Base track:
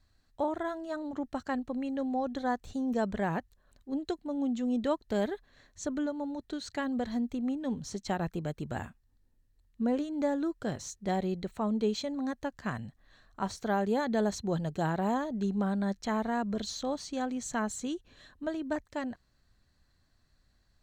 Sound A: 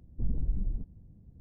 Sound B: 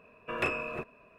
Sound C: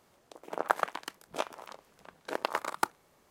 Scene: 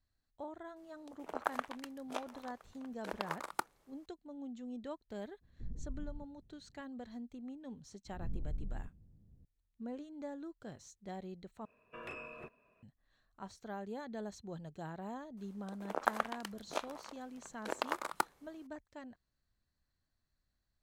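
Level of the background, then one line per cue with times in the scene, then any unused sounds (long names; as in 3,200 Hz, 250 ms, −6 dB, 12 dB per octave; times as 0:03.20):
base track −14.5 dB
0:00.76: mix in C −8 dB + single-tap delay 1,017 ms −24 dB
0:05.41: mix in A −13.5 dB
0:08.05: mix in A −11 dB + peak hold with a rise ahead of every peak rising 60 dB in 0.51 s
0:11.65: overwrite with B −12.5 dB + brickwall limiter −22.5 dBFS
0:15.37: mix in C −4.5 dB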